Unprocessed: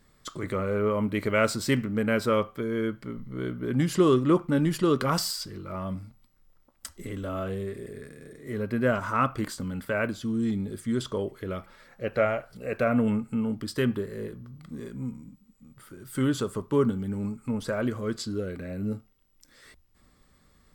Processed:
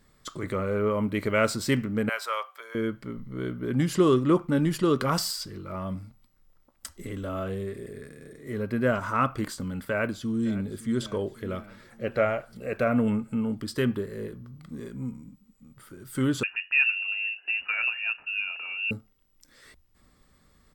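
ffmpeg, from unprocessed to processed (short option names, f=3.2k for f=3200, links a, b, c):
-filter_complex "[0:a]asettb=1/sr,asplit=3[a][b][c];[a]atrim=end=2.094[d];[b]atrim=start=2.09:end=2.75,asetpts=PTS-STARTPTS,afade=t=in:d=0.004:c=qsin,afade=t=out:st=0.656:d=0.004:c=qsin,highpass=f=740:w=0.5412,highpass=f=740:w=1.3066[e];[c]atrim=start=2.746[f];[d][e]acrossfade=d=0.004:c1=hsin:c2=qsin[g];[g][f]acrossfade=d=0.004:c1=qsin:c2=hsin,asplit=2[h][i];[i]afade=t=in:st=9.89:d=0.01,afade=t=out:st=11:d=0.01,aecho=0:1:560|1120|1680|2240|2800|3360:0.133352|0.0800113|0.0480068|0.0288041|0.0172824|0.0103695[j];[h][j]amix=inputs=2:normalize=0,asettb=1/sr,asplit=3[k][l][m];[k]atrim=end=16.434[n];[l]atrim=start=16.43:end=18.91,asetpts=PTS-STARTPTS,afade=t=in:d=0.004:c=qsin,afade=t=out:st=2.476:d=0.004:c=qsin,lowpass=f=2.5k:t=q:w=0.5098,lowpass=f=2.5k:t=q:w=0.6013,lowpass=f=2.5k:t=q:w=0.9,lowpass=f=2.5k:t=q:w=2.563,afreqshift=-2900[o];[m]atrim=start=18.906[p];[n][o]acrossfade=d=0.004:c1=hsin:c2=qsin[q];[q][p]acrossfade=d=0.004:c1=qsin:c2=hsin"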